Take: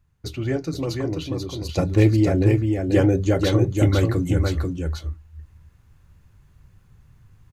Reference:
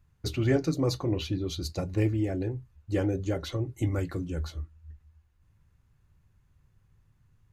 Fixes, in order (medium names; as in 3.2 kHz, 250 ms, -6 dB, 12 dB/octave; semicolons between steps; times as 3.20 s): inverse comb 488 ms -4 dB; gain correction -10 dB, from 1.69 s